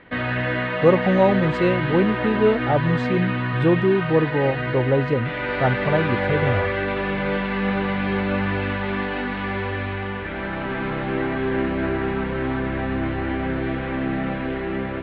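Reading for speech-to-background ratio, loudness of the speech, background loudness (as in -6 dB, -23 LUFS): 3.0 dB, -21.5 LUFS, -24.5 LUFS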